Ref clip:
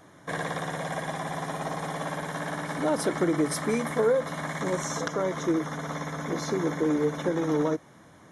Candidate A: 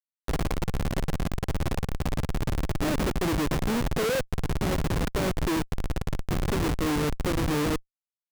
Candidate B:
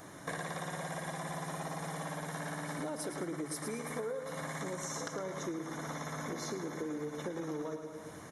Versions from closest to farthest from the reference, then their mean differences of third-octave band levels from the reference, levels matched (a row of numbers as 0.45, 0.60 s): B, A; 4.5, 8.0 dB